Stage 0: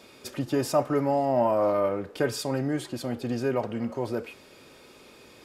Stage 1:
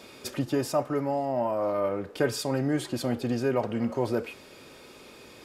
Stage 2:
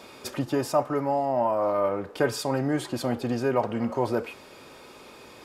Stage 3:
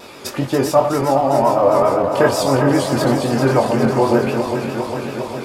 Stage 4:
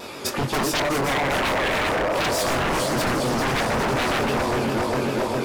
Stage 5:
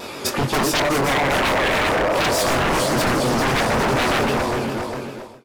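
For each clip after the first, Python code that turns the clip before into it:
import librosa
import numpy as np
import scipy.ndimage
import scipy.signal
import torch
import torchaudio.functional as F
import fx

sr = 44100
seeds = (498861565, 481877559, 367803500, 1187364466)

y1 = fx.rider(x, sr, range_db=5, speed_s=0.5)
y1 = F.gain(torch.from_numpy(y1), -1.0).numpy()
y2 = fx.peak_eq(y1, sr, hz=950.0, db=6.0, octaves=1.2)
y3 = fx.reverse_delay_fb(y2, sr, ms=203, feedback_pct=85, wet_db=-7.0)
y3 = fx.vibrato(y3, sr, rate_hz=7.7, depth_cents=89.0)
y3 = fx.doubler(y3, sr, ms=22.0, db=-5.0)
y3 = F.gain(torch.from_numpy(y3), 7.5).numpy()
y4 = fx.rider(y3, sr, range_db=3, speed_s=2.0)
y4 = 10.0 ** (-17.5 / 20.0) * (np.abs((y4 / 10.0 ** (-17.5 / 20.0) + 3.0) % 4.0 - 2.0) - 1.0)
y5 = fx.fade_out_tail(y4, sr, length_s=1.25)
y5 = F.gain(torch.from_numpy(y5), 3.5).numpy()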